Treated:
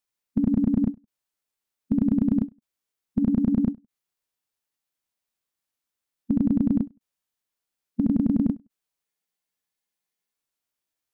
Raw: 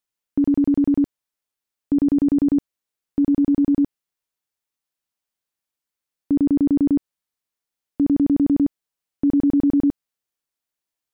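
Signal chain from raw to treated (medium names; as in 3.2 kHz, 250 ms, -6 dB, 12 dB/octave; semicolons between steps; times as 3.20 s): formant shift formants -4 st; spectral freeze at 9.05 s, 1.29 s; endings held to a fixed fall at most 310 dB/s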